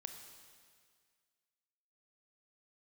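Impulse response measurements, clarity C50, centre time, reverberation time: 6.5 dB, 38 ms, 1.9 s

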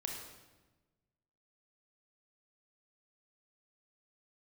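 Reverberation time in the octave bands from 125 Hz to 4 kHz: 1.8, 1.5, 1.3, 1.1, 1.0, 0.95 seconds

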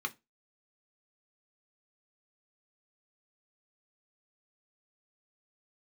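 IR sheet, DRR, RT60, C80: 4.5 dB, non-exponential decay, 31.5 dB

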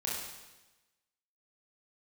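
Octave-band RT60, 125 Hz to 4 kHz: 1.2, 1.1, 1.1, 1.1, 1.1, 1.1 seconds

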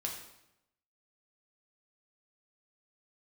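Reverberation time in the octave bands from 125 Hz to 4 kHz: 1.0, 0.95, 0.85, 0.85, 0.80, 0.70 seconds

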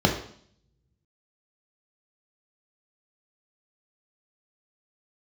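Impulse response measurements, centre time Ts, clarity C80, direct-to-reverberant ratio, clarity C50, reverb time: 26 ms, 11.5 dB, 1.0 dB, 7.5 dB, 0.60 s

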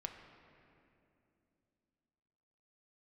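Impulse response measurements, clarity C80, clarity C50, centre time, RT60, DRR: 7.0 dB, 6.0 dB, 47 ms, 2.7 s, 3.5 dB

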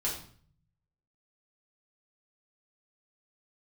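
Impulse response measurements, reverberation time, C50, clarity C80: 0.50 s, 6.0 dB, 10.0 dB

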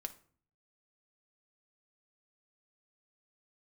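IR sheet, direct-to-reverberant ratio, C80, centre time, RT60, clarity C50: 6.0 dB, 20.5 dB, 5 ms, 0.50 s, 15.0 dB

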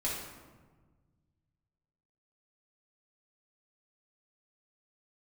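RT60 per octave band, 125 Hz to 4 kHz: 2.6, 2.0, 1.5, 1.3, 1.0, 0.80 seconds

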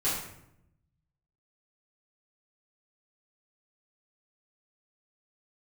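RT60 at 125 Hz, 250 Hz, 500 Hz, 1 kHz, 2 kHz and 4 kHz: 1.5, 1.1, 0.85, 0.75, 0.65, 0.50 seconds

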